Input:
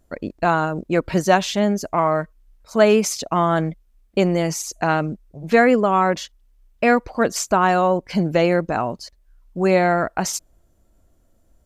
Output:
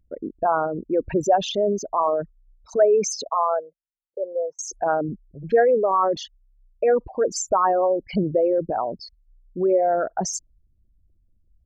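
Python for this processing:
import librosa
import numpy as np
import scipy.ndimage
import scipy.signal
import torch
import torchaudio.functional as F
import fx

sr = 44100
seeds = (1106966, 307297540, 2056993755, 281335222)

y = fx.envelope_sharpen(x, sr, power=3.0)
y = fx.ellip_bandpass(y, sr, low_hz=500.0, high_hz=1500.0, order=3, stop_db=40, at=(3.29, 4.59))
y = F.gain(torch.from_numpy(y), -2.5).numpy()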